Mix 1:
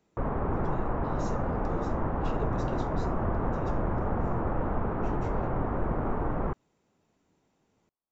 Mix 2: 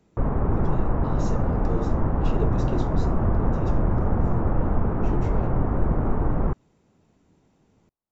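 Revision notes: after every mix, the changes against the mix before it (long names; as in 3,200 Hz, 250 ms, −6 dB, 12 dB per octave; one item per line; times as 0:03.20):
speech +4.5 dB
master: add low-shelf EQ 300 Hz +9.5 dB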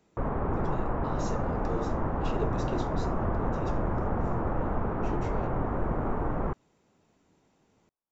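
master: add low-shelf EQ 300 Hz −9.5 dB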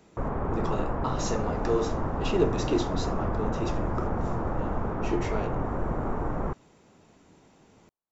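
speech +10.0 dB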